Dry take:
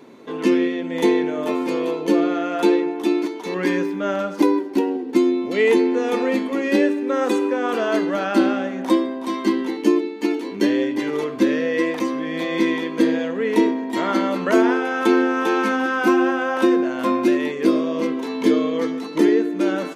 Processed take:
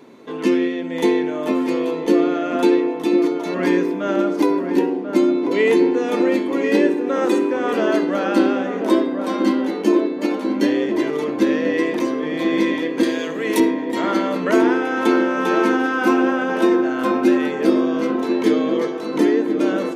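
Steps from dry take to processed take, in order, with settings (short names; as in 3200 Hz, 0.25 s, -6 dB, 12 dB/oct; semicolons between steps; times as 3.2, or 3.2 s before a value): 13.03–13.6 RIAA curve recording; darkening echo 1.04 s, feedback 71%, low-pass 1300 Hz, level -6 dB; on a send at -21.5 dB: reverb RT60 0.35 s, pre-delay 20 ms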